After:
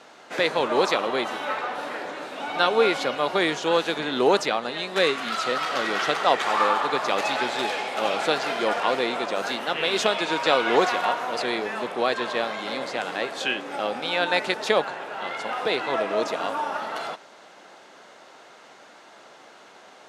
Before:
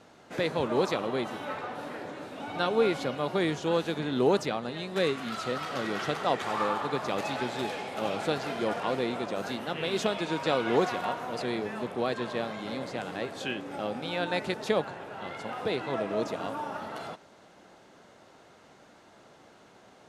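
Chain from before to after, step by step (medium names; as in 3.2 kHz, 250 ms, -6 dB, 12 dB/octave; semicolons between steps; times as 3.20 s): frequency weighting A; trim +8.5 dB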